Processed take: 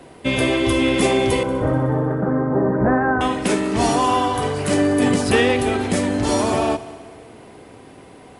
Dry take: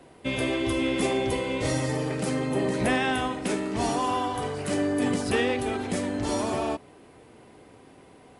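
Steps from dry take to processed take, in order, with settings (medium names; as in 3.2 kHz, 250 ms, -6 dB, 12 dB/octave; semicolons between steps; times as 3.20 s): 1.43–3.21 s: Chebyshev low-pass 1.6 kHz, order 5; multi-head delay 62 ms, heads first and third, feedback 61%, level -20 dB; trim +8.5 dB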